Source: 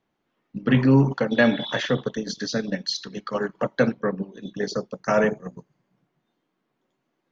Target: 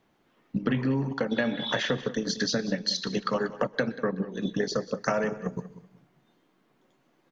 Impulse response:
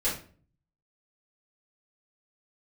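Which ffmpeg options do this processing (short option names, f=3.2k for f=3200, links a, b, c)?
-filter_complex "[0:a]acompressor=threshold=-32dB:ratio=10,aecho=1:1:189|378:0.158|0.0333,asplit=2[a][b];[1:a]atrim=start_sample=2205,asetrate=41895,aresample=44100,adelay=119[c];[b][c]afir=irnorm=-1:irlink=0,volume=-30dB[d];[a][d]amix=inputs=2:normalize=0,volume=8dB"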